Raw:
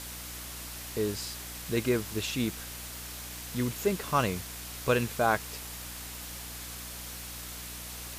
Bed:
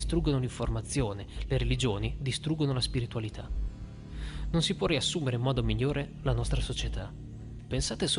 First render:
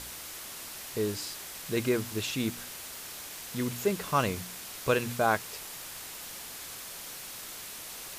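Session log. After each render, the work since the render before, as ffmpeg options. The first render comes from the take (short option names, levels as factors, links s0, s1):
-af "bandreject=f=60:t=h:w=4,bandreject=f=120:t=h:w=4,bandreject=f=180:t=h:w=4,bandreject=f=240:t=h:w=4,bandreject=f=300:t=h:w=4"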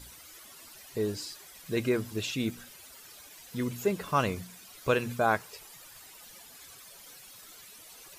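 -af "afftdn=nr=13:nf=-43"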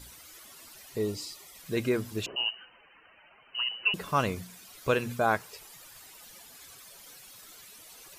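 -filter_complex "[0:a]asettb=1/sr,asplit=3[s0][s1][s2];[s0]atrim=end=0.994[s3];[s1]atrim=start=0.99:end=1.58,asetpts=PTS-STARTPTS,afade=t=in:d=0.004:c=qsin,afade=t=out:st=0.586:d=0.004:c=qsin,asuperstop=centerf=1600:order=20:qfactor=4.8[s4];[s2]atrim=start=1.576[s5];[s3][s4]acrossfade=d=0.004:c1=hsin:c2=qsin[s6];[s6][s5]acrossfade=d=0.004:c1=qsin:c2=hsin,asettb=1/sr,asplit=3[s7][s8][s9];[s7]atrim=end=2.264[s10];[s8]atrim=start=2.26:end=3.94,asetpts=PTS-STARTPTS,afade=t=in:d=0.004:c=qsin,afade=t=out:st=1.676:d=0.004:c=qsin,lowpass=f=2600:t=q:w=0.5098,lowpass=f=2600:t=q:w=0.6013,lowpass=f=2600:t=q:w=0.9,lowpass=f=2600:t=q:w=2.563,afreqshift=-3100[s11];[s9]atrim=start=3.936[s12];[s10][s11]acrossfade=d=0.004:c1=hsin:c2=qsin[s13];[s13][s12]acrossfade=d=0.004:c1=qsin:c2=hsin"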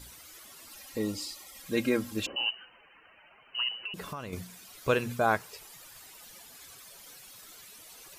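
-filter_complex "[0:a]asettb=1/sr,asplit=3[s0][s1][s2];[s0]atrim=end=0.694[s3];[s1]atrim=start=0.69:end=2.52,asetpts=PTS-STARTPTS,afade=t=in:d=0.004:c=qsin,afade=t=out:st=1.826:d=0.004:c=qsin,aecho=1:1:3.7:0.65,atrim=end_sample=80703[s4];[s2]atrim=start=2.516[s5];[s3][s4]acrossfade=d=0.004:c1=hsin:c2=qsin[s6];[s6][s5]acrossfade=d=0.004:c1=qsin:c2=hsin,asettb=1/sr,asplit=3[s7][s8][s9];[s7]atrim=end=3.744[s10];[s8]atrim=start=3.74:end=4.33,asetpts=PTS-STARTPTS,afade=t=in:d=0.004:c=qsin,afade=t=out:st=0.586:d=0.004:c=qsin,acompressor=threshold=0.02:ratio=16:attack=3.2:release=140:knee=1:detection=peak[s11];[s9]atrim=start=4.326[s12];[s10][s11]acrossfade=d=0.004:c1=hsin:c2=qsin[s13];[s13][s12]acrossfade=d=0.004:c1=qsin:c2=hsin"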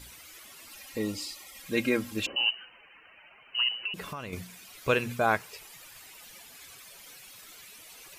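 -af "equalizer=f=2400:t=o:w=0.83:g=5.5"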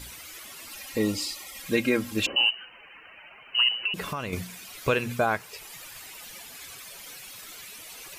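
-af "acontrast=55,alimiter=limit=0.224:level=0:latency=1:release=399"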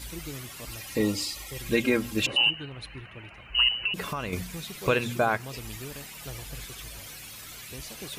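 -filter_complex "[1:a]volume=0.251[s0];[0:a][s0]amix=inputs=2:normalize=0"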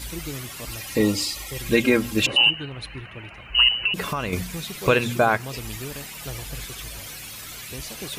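-af "volume=1.88"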